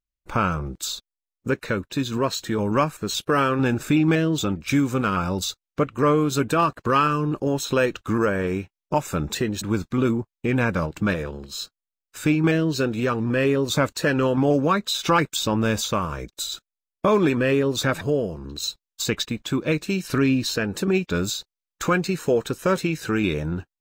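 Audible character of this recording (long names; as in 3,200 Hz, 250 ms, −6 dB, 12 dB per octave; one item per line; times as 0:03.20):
background noise floor −90 dBFS
spectral slope −5.0 dB per octave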